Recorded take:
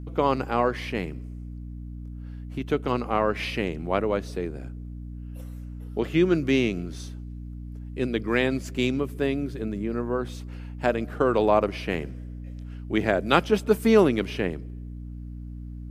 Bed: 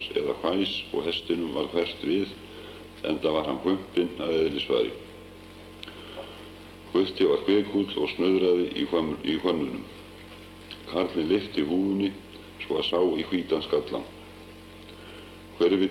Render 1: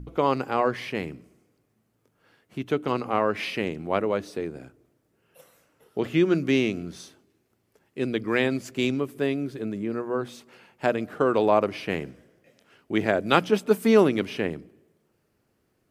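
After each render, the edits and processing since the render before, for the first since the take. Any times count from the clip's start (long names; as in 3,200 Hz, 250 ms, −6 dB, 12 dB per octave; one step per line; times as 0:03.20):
hum removal 60 Hz, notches 5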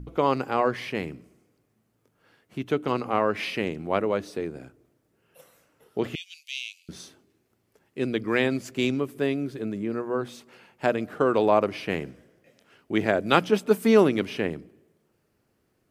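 0:06.15–0:06.89: Butterworth high-pass 2,600 Hz 48 dB per octave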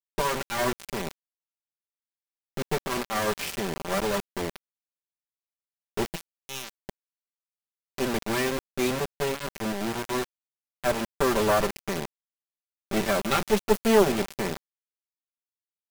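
lower of the sound and its delayed copy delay 5.1 ms
bit reduction 5 bits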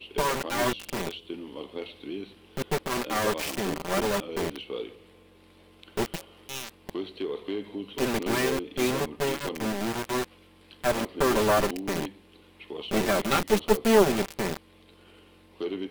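mix in bed −10.5 dB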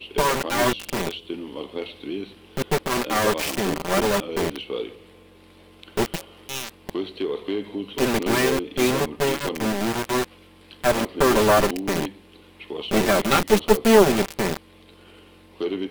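level +5.5 dB
brickwall limiter −2 dBFS, peak gain reduction 1 dB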